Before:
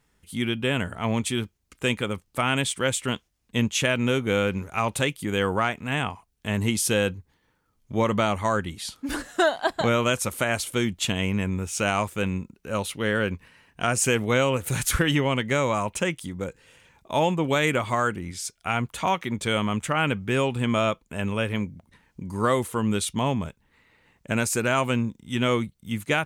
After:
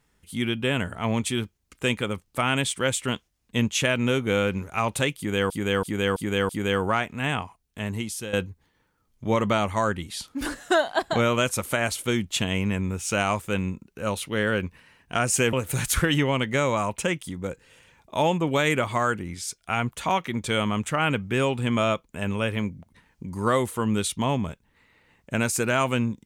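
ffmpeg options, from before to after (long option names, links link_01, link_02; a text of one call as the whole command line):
ffmpeg -i in.wav -filter_complex "[0:a]asplit=7[link_01][link_02][link_03][link_04][link_05][link_06][link_07];[link_01]atrim=end=5.502[link_08];[link_02]atrim=start=5.168:end=5.502[link_09];[link_03]atrim=start=5.168:end=5.502[link_10];[link_04]atrim=start=5.168:end=5.502[link_11];[link_05]atrim=start=5.168:end=7.01,asetpts=PTS-STARTPTS,afade=type=out:start_time=0.912:duration=0.93:silence=0.211349[link_12];[link_06]atrim=start=7.01:end=14.212,asetpts=PTS-STARTPTS,afade=type=in:duration=0.004:curve=hsin:silence=0.211349[link_13];[link_07]atrim=start=14.498[link_14];[link_08][link_09]acrossfade=duration=0.004:curve1=hsin:curve2=hsin[link_15];[link_15][link_10]acrossfade=duration=0.004:curve1=hsin:curve2=hsin[link_16];[link_16][link_11]acrossfade=duration=0.004:curve1=hsin:curve2=hsin[link_17];[link_12][link_13]concat=n=2:v=0:a=1[link_18];[link_17][link_18]acrossfade=duration=0.004:curve1=hsin:curve2=hsin[link_19];[link_19][link_14]acrossfade=duration=0.004:curve1=hsin:curve2=hsin" out.wav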